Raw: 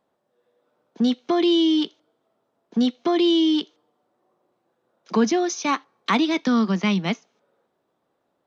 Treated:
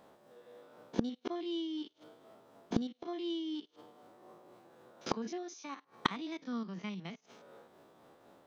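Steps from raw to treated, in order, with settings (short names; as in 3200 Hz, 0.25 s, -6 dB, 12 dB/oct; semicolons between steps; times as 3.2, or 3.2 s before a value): stepped spectrum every 50 ms; flipped gate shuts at -27 dBFS, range -32 dB; tremolo triangle 4 Hz, depth 35%; gain +14.5 dB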